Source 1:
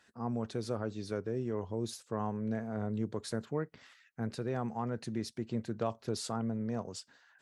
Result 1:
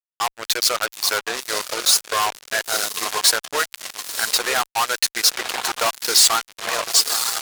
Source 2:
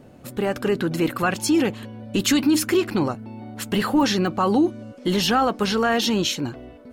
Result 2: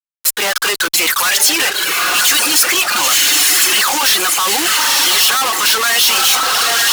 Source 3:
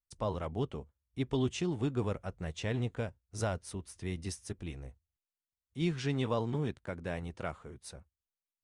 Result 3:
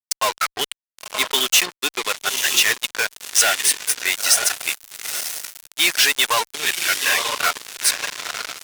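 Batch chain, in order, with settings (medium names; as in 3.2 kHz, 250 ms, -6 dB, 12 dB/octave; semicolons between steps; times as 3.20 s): in parallel at -8 dB: saturation -25.5 dBFS; on the sum: spectral noise reduction 9 dB; treble shelf 7.7 kHz -7 dB; on a send: echo that smears into a reverb 983 ms, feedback 51%, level -5 dB; on the sum: reverb removal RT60 0.79 s; high-pass 1.1 kHz 12 dB/octave; fuzz box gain 48 dB, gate -50 dBFS; tilt EQ +2.5 dB/octave; trim -2.5 dB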